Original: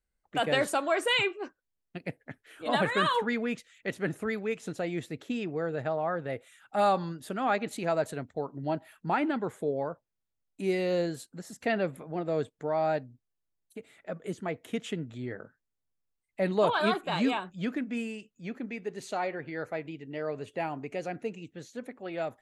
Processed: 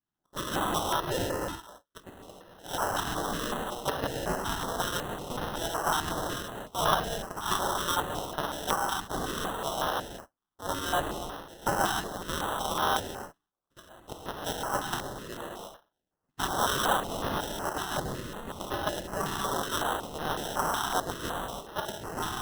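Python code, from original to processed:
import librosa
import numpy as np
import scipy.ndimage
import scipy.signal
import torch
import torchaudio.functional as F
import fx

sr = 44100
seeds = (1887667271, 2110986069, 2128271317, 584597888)

y = fx.cycle_switch(x, sr, every=2, mode='inverted')
y = fx.rider(y, sr, range_db=5, speed_s=0.5)
y = fx.high_shelf(y, sr, hz=5100.0, db=-11.5)
y = fx.rev_gated(y, sr, seeds[0], gate_ms=350, shape='flat', drr_db=-2.0)
y = fx.filter_lfo_highpass(y, sr, shape='saw_down', hz=1.0, low_hz=780.0, high_hz=2100.0, q=1.2)
y = fx.sample_hold(y, sr, seeds[1], rate_hz=2300.0, jitter_pct=0)
y = fx.filter_held_notch(y, sr, hz=5.4, low_hz=540.0, high_hz=7600.0)
y = F.gain(torch.from_numpy(y), 1.5).numpy()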